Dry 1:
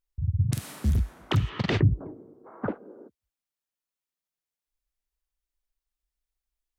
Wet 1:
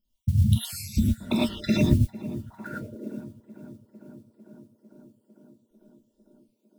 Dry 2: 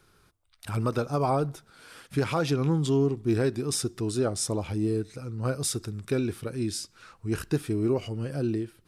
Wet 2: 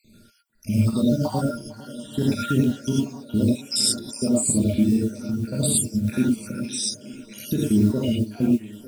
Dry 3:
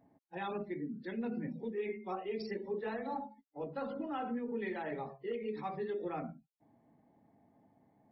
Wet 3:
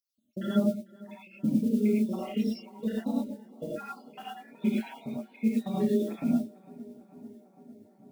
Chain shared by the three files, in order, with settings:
time-frequency cells dropped at random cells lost 75%
hollow resonant body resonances 220/610/940/1,400 Hz, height 15 dB, ringing for 95 ms
tape delay 450 ms, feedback 86%, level −20 dB, low-pass 1,800 Hz
brickwall limiter −19.5 dBFS
noise that follows the level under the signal 32 dB
drawn EQ curve 140 Hz 0 dB, 250 Hz +3 dB, 1,200 Hz −14 dB, 3,300 Hz +3 dB
reverb whose tail is shaped and stops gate 130 ms rising, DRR −4.5 dB
level +5 dB

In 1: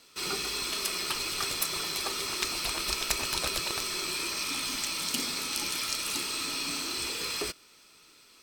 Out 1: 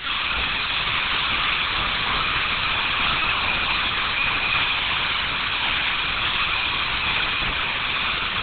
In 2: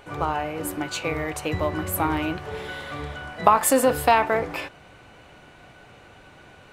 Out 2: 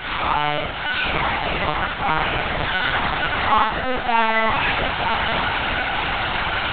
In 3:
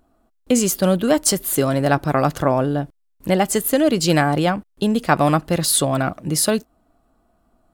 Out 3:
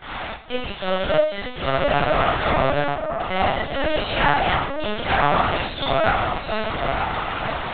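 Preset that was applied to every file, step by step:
converter with a step at zero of −16.5 dBFS
high-pass filter 780 Hz 12 dB per octave
flanger 0.38 Hz, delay 0.4 ms, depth 7.3 ms, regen −38%
soft clipping −18.5 dBFS
on a send: delay with a low-pass on its return 923 ms, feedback 50%, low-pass 1,300 Hz, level −4 dB
on the sum: four-comb reverb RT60 0.6 s, combs from 28 ms, DRR −5 dB
in parallel at +1 dB: brickwall limiter −12.5 dBFS
on the sum: linear-prediction vocoder at 8 kHz pitch kept
expander for the loud parts 1.5 to 1, over −29 dBFS
level −2.5 dB

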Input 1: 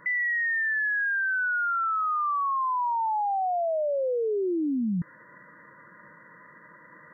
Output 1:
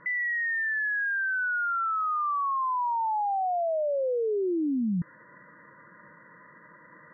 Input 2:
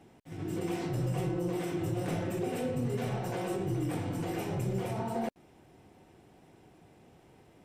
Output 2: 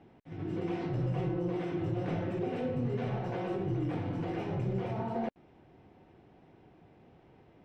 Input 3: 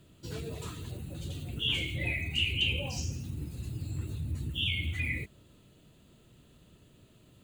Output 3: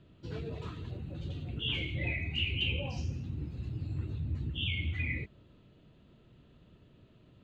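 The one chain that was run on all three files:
high-frequency loss of the air 230 metres

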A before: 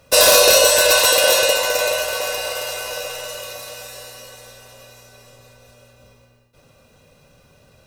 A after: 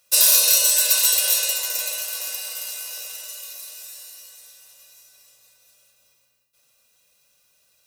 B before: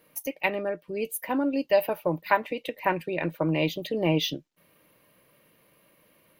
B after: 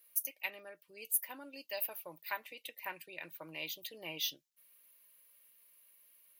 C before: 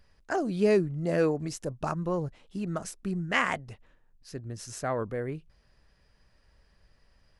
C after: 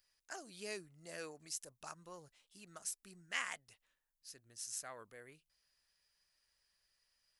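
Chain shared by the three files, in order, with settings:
first-order pre-emphasis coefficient 0.97
level −1 dB

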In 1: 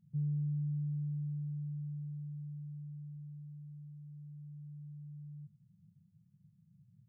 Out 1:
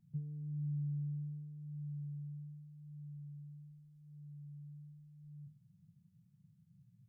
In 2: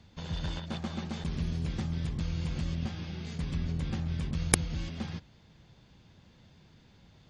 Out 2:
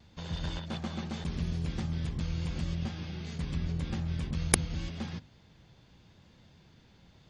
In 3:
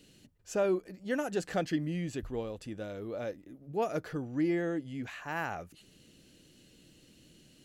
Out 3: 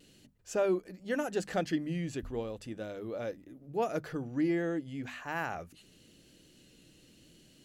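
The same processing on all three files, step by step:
pitch vibrato 0.84 Hz 21 cents
mains-hum notches 50/100/150/200/250 Hz

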